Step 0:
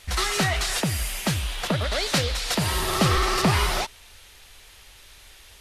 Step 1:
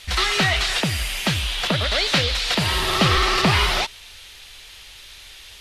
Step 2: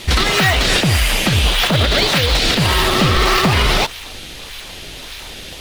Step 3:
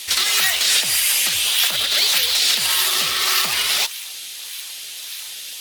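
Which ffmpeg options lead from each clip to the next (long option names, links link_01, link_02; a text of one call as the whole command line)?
ffmpeg -i in.wav -filter_complex "[0:a]acrossover=split=3700[link_01][link_02];[link_02]acompressor=threshold=-35dB:ratio=4:attack=1:release=60[link_03];[link_01][link_03]amix=inputs=2:normalize=0,equalizer=frequency=3500:width_type=o:width=1.8:gain=8.5,volume=1.5dB" out.wav
ffmpeg -i in.wav -filter_complex "[0:a]asplit=2[link_01][link_02];[link_02]acrusher=samples=24:mix=1:aa=0.000001:lfo=1:lforange=38.4:lforate=1.7,volume=-4.5dB[link_03];[link_01][link_03]amix=inputs=2:normalize=0,alimiter=limit=-13dB:level=0:latency=1:release=103,volume=8.5dB" out.wav
ffmpeg -i in.wav -af "aderivative,volume=6dB" -ar 44100 -c:a aac -b:a 96k out.aac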